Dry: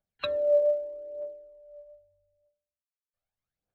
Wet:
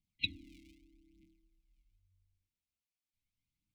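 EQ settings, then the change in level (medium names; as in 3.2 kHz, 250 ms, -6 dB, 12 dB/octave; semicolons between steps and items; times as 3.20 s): brick-wall FIR band-stop 330–2000 Hz; low-pass 3.7 kHz 6 dB/octave; +4.0 dB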